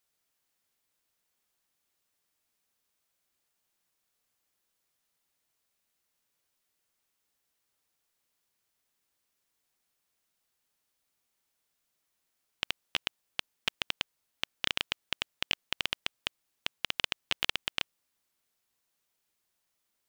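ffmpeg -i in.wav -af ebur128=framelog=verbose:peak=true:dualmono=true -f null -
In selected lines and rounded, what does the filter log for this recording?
Integrated loudness:
  I:         -31.6 LUFS
  Threshold: -41.6 LUFS
Loudness range:
  LRA:         7.9 LU
  Threshold: -52.9 LUFS
  LRA low:   -38.7 LUFS
  LRA high:  -30.9 LUFS
True peak:
  Peak:       -6.3 dBFS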